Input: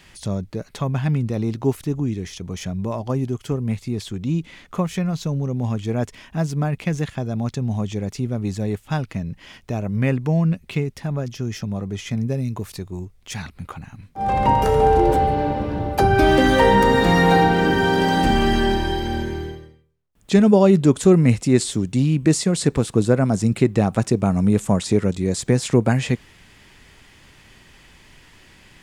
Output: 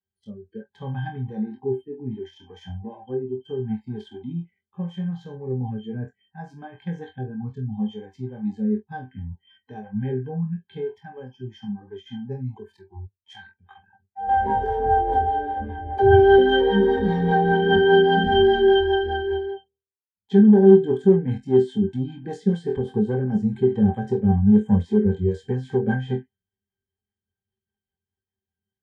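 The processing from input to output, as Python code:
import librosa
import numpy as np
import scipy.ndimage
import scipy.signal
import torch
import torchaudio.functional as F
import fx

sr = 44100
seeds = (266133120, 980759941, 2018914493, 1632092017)

p1 = fx.low_shelf(x, sr, hz=91.0, db=-2.0)
p2 = p1 + fx.room_flutter(p1, sr, wall_m=4.0, rt60_s=0.27, dry=0)
p3 = fx.leveller(p2, sr, passes=2)
p4 = fx.rotary_switch(p3, sr, hz=0.7, then_hz=5.0, switch_at_s=11.11)
p5 = fx.octave_resonator(p4, sr, note='G', decay_s=0.12)
y = fx.noise_reduce_blind(p5, sr, reduce_db=25)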